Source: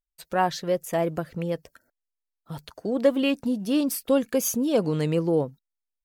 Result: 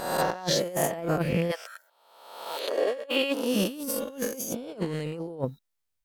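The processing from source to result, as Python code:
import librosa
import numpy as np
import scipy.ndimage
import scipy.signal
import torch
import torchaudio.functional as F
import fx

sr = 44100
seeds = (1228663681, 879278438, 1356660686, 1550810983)

y = fx.spec_swells(x, sr, rise_s=1.04)
y = fx.highpass(y, sr, hz=fx.line((1.5, 710.0), (3.54, 330.0)), slope=24, at=(1.5, 3.54), fade=0.02)
y = fx.over_compress(y, sr, threshold_db=-28.0, ratio=-0.5)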